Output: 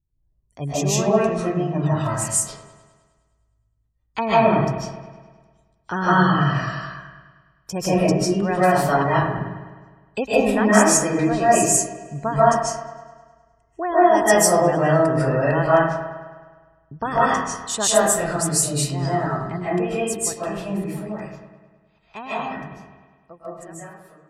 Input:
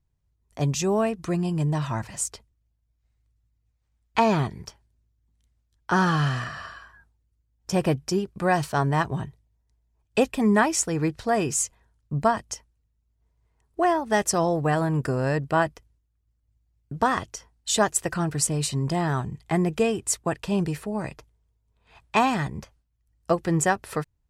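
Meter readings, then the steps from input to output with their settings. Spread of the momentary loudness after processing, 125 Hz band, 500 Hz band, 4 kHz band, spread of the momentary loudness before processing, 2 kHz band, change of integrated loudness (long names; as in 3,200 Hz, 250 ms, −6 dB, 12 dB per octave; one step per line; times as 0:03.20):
18 LU, +2.5 dB, +7.0 dB, +3.5 dB, 11 LU, +4.5 dB, +5.0 dB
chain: fade-out on the ending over 7.44 s
gate on every frequency bin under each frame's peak −30 dB strong
high-shelf EQ 9,100 Hz +11.5 dB
on a send: delay with a low-pass on its return 103 ms, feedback 62%, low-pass 2,900 Hz, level −10.5 dB
on the sum: comb and all-pass reverb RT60 0.58 s, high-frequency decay 0.5×, pre-delay 110 ms, DRR −9.5 dB
level −4.5 dB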